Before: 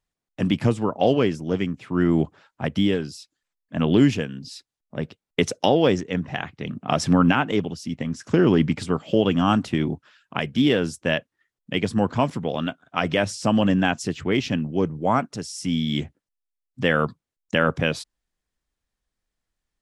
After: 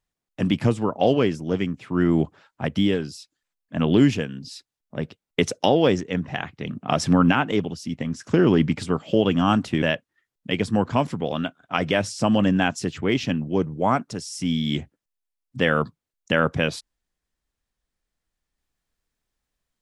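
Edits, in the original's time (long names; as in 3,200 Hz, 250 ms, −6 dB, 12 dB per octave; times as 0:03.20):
0:09.82–0:11.05: remove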